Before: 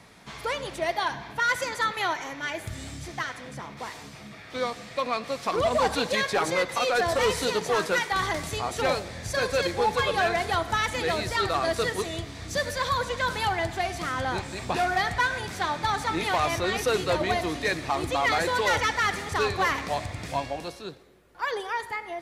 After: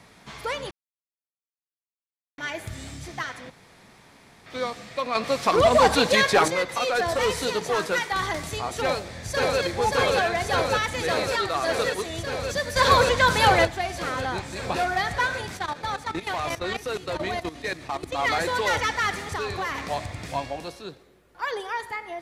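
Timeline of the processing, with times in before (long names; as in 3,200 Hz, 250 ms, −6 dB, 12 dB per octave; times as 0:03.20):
0:00.71–0:02.38: silence
0:03.50–0:04.46: fill with room tone
0:05.15–0:06.48: clip gain +6.5 dB
0:08.78–0:09.62: delay throw 580 ms, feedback 85%, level −1 dB
0:11.14–0:12.10: low-shelf EQ 100 Hz −9 dB
0:12.76–0:13.65: clip gain +8 dB
0:15.57–0:18.19: output level in coarse steps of 14 dB
0:19.18–0:19.82: downward compressor, threshold −25 dBFS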